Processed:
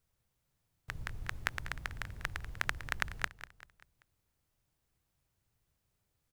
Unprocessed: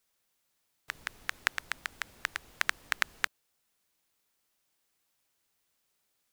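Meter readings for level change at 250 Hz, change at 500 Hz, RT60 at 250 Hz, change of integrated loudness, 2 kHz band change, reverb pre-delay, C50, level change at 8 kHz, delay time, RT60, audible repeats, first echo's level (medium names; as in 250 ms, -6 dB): +5.0 dB, -0.5 dB, no reverb, -4.5 dB, -4.5 dB, no reverb, no reverb, -7.0 dB, 194 ms, no reverb, 4, -14.0 dB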